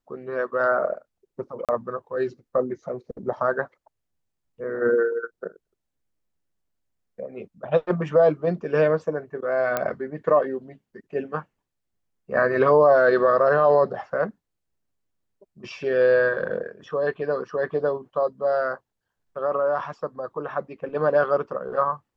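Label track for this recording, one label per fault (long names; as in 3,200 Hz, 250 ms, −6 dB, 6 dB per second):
1.650000	1.690000	drop-out 37 ms
9.770000	9.770000	click −10 dBFS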